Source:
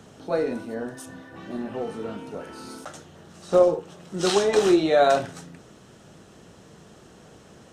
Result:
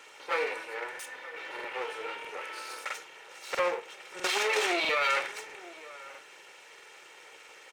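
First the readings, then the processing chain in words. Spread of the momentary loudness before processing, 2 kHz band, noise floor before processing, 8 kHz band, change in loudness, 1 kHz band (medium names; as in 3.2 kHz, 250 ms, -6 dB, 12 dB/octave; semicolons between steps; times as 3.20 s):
20 LU, +4.5 dB, -51 dBFS, -3.5 dB, -8.5 dB, -5.0 dB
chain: comb filter that takes the minimum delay 2.2 ms; high-pass 650 Hz 12 dB/octave; peaking EQ 2.3 kHz +13 dB 0.78 oct; peak limiter -18.5 dBFS, peak gain reduction 10.5 dB; echo from a far wall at 160 m, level -17 dB; crackling interface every 0.65 s, samples 2048, repeat, from 0.90 s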